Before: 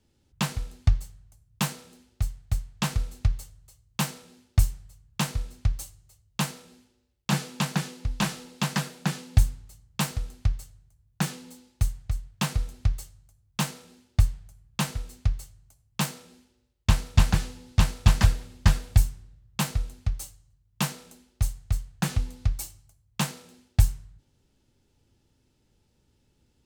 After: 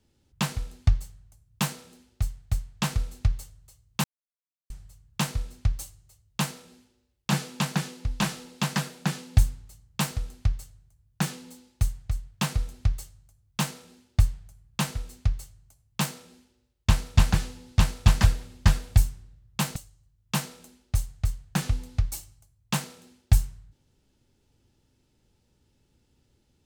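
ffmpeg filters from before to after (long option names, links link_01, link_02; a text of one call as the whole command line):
ffmpeg -i in.wav -filter_complex "[0:a]asplit=4[link_01][link_02][link_03][link_04];[link_01]atrim=end=4.04,asetpts=PTS-STARTPTS,afade=type=out:start_time=4.036:duration=0.004:curve=hsin[link_05];[link_02]atrim=start=4.04:end=4.7,asetpts=PTS-STARTPTS,volume=0[link_06];[link_03]atrim=start=4.7:end=19.762,asetpts=PTS-STARTPTS,afade=type=in:duration=0.004:curve=hsin[link_07];[link_04]atrim=start=20.228[link_08];[link_05][link_06][link_07]concat=n=3:v=0:a=1[link_09];[link_09][link_08]acrossfade=duration=0.004:curve1=hsin:curve2=hsin" out.wav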